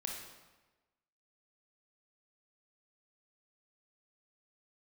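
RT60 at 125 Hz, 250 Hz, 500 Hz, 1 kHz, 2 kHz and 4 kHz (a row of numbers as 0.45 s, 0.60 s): 1.2 s, 1.2 s, 1.2 s, 1.2 s, 1.1 s, 0.90 s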